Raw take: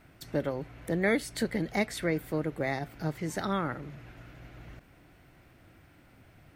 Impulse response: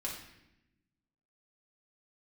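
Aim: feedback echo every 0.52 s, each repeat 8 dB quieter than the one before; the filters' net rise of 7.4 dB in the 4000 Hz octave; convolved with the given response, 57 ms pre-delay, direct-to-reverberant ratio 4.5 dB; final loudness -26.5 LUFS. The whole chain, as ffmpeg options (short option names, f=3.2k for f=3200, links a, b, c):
-filter_complex "[0:a]equalizer=f=4k:t=o:g=8.5,aecho=1:1:520|1040|1560|2080|2600:0.398|0.159|0.0637|0.0255|0.0102,asplit=2[a][b];[1:a]atrim=start_sample=2205,adelay=57[c];[b][c]afir=irnorm=-1:irlink=0,volume=-5.5dB[d];[a][d]amix=inputs=2:normalize=0,volume=3dB"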